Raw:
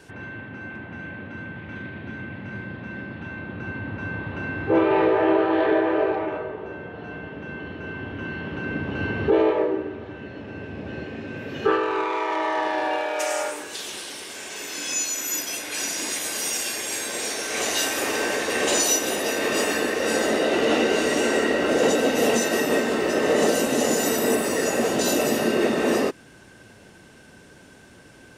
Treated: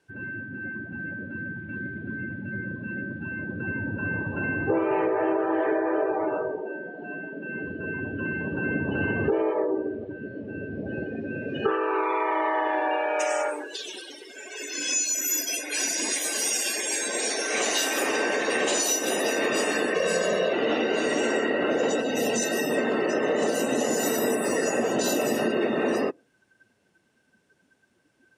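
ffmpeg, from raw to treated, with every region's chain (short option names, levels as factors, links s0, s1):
-filter_complex "[0:a]asettb=1/sr,asplit=3[s0][s1][s2];[s0]atrim=end=6.624[s3];[s1]atrim=start=6.62:end=7.55,asetpts=PTS-STARTPTS,afade=t=in:d=0.004:c=qsin,afade=t=out:st=0.926:d=0.004:c=qsin,highpass=190,bandreject=f=460:w=15[s4];[s2]atrim=start=7.546[s5];[s3][s4]acrossfade=d=0.004:c1=hsin:c2=qsin[s6];[s6][s5]acrossfade=d=0.004:c1=qsin:c2=hsin,asettb=1/sr,asplit=3[s7][s8][s9];[s7]atrim=end=19.944[s10];[s8]atrim=start=19.94:end=20.53,asetpts=PTS-STARTPTS,afade=t=in:d=0.004:c=qsin,afade=t=out:st=0.586:d=0.004:c=qsin,equalizer=f=180:t=o:w=0.26:g=13.5,aecho=1:1:1.8:0.75,atrim=end_sample=26019[s11];[s9]atrim=start=20.526[s12];[s10][s11]acrossfade=d=0.004:c1=hsin:c2=qsin[s13];[s13][s12]acrossfade=d=0.004:c1=qsin:c2=hsin,asettb=1/sr,asplit=3[s14][s15][s16];[s14]atrim=end=22.024[s17];[s15]atrim=start=22.02:end=22.78,asetpts=PTS-STARTPTS,afade=t=in:d=0.004:c=qsin,afade=t=out:st=0.756:d=0.004:c=qsin,acrossover=split=180|3000[s18][s19][s20];[s19]acompressor=threshold=0.02:ratio=1.5:attack=3.2:release=140:knee=2.83:detection=peak[s21];[s18][s21][s20]amix=inputs=3:normalize=0,volume=10,asoftclip=hard,volume=0.1[s22];[s16]atrim=start=22.776[s23];[s17][s22]acrossfade=d=0.004:c1=hsin:c2=qsin[s24];[s24][s23]acrossfade=d=0.004:c1=qsin:c2=hsin,highpass=f=120:p=1,afftdn=nr=23:nf=-33,acompressor=threshold=0.0562:ratio=6,volume=1.5"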